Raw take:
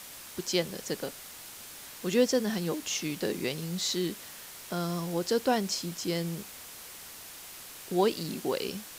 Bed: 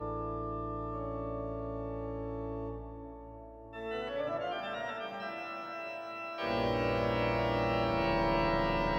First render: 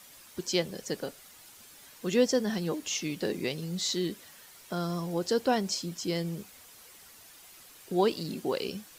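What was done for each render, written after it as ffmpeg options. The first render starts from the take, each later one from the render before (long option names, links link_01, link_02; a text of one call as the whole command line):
ffmpeg -i in.wav -af "afftdn=noise_reduction=9:noise_floor=-46" out.wav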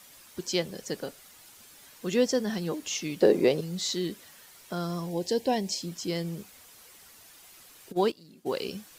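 ffmpeg -i in.wav -filter_complex "[0:a]asettb=1/sr,asplit=3[link_01][link_02][link_03];[link_01]atrim=end=3.214[link_04];[link_02]atrim=start=3.21:end=3.61,asetpts=PTS-STARTPTS,afade=type=in:duration=0.004:curve=qsin,afade=type=out:start_time=0.396:duration=0.004:curve=qsin,equalizer=frequency=520:width=0.63:gain=13.5[link_05];[link_03]atrim=start=3.606[link_06];[link_04][link_05]acrossfade=duration=0.004:curve1=hsin:curve2=qsin[link_07];[link_07][link_06]acrossfade=duration=0.004:curve1=qsin:curve2=hsin,asettb=1/sr,asplit=3[link_08][link_09][link_10];[link_08]atrim=end=5.094[link_11];[link_09]atrim=start=5.09:end=5.82,asetpts=PTS-STARTPTS,afade=type=in:duration=0.004:curve=qsin,afade=type=out:start_time=0.726:duration=0.004:curve=qsin,asuperstop=centerf=1300:order=4:qfactor=1.8[link_12];[link_10]atrim=start=5.816[link_13];[link_11][link_12]acrossfade=duration=0.004:curve1=hsin:curve2=qsin[link_14];[link_14][link_13]acrossfade=duration=0.004:curve1=qsin:curve2=hsin,asplit=3[link_15][link_16][link_17];[link_15]afade=type=out:start_time=7.91:duration=0.02[link_18];[link_16]agate=range=-17dB:threshold=-29dB:ratio=16:release=100:detection=peak,afade=type=in:start_time=7.91:duration=0.02,afade=type=out:start_time=8.45:duration=0.02[link_19];[link_17]afade=type=in:start_time=8.45:duration=0.02[link_20];[link_18][link_19][link_20]amix=inputs=3:normalize=0" out.wav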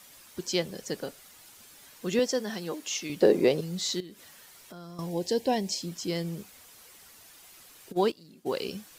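ffmpeg -i in.wav -filter_complex "[0:a]asettb=1/sr,asplit=3[link_01][link_02][link_03];[link_01]atrim=end=2.194[link_04];[link_02]atrim=start=2.19:end=3.1,asetpts=PTS-STARTPTS,afade=type=in:duration=0.004:curve=qsin,afade=type=out:start_time=0.906:duration=0.004:curve=qsin,highpass=frequency=350:poles=1[link_05];[link_03]atrim=start=3.096[link_06];[link_04][link_05]acrossfade=duration=0.004:curve1=hsin:curve2=qsin[link_07];[link_07][link_06]acrossfade=duration=0.004:curve1=qsin:curve2=hsin,asettb=1/sr,asplit=3[link_08][link_09][link_10];[link_08]atrim=end=4.004[link_11];[link_09]atrim=start=4:end=4.99,asetpts=PTS-STARTPTS,afade=type=in:duration=0.004:curve=qsin,afade=type=out:start_time=0.986:duration=0.004:curve=qsin,acompressor=threshold=-46dB:ratio=3:attack=3.2:release=140:knee=1:detection=peak[link_12];[link_10]atrim=start=4.986[link_13];[link_11][link_12]acrossfade=duration=0.004:curve1=hsin:curve2=qsin[link_14];[link_14][link_13]acrossfade=duration=0.004:curve1=qsin:curve2=hsin" out.wav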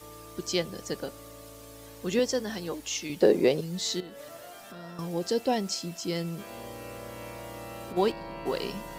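ffmpeg -i in.wav -i bed.wav -filter_complex "[1:a]volume=-10.5dB[link_01];[0:a][link_01]amix=inputs=2:normalize=0" out.wav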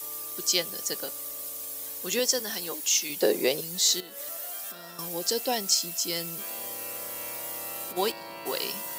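ffmpeg -i in.wav -af "highpass=61,aemphasis=mode=production:type=riaa" out.wav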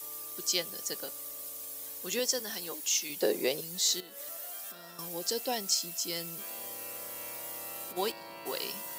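ffmpeg -i in.wav -af "volume=-5dB" out.wav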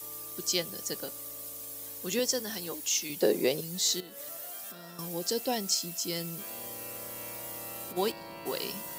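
ffmpeg -i in.wav -af "lowshelf=frequency=270:gain=11.5" out.wav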